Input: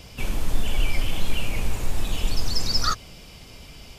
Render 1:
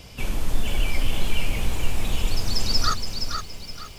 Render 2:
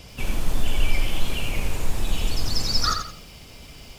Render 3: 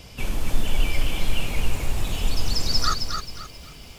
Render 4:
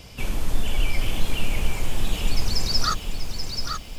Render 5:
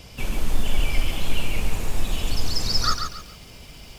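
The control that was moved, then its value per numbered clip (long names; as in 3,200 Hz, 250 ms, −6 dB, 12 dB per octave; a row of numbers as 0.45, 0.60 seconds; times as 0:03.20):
feedback echo at a low word length, delay time: 469, 86, 265, 832, 139 milliseconds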